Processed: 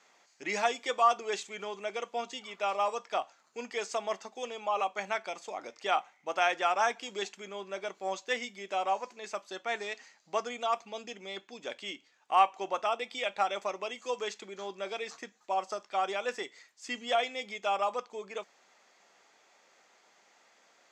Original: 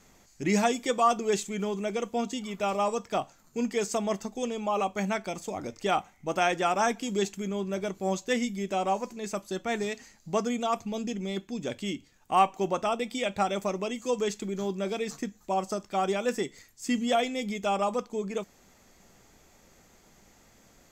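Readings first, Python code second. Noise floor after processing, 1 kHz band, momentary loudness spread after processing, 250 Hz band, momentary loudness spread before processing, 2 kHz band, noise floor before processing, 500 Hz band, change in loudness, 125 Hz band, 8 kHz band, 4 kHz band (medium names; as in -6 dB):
-66 dBFS, -1.5 dB, 14 LU, -17.0 dB, 9 LU, 0.0 dB, -60 dBFS, -5.5 dB, -3.5 dB, under -20 dB, -7.5 dB, -1.0 dB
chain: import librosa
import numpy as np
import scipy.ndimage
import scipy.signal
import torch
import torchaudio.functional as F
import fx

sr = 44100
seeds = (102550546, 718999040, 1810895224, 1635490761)

y = fx.bandpass_edges(x, sr, low_hz=650.0, high_hz=4800.0)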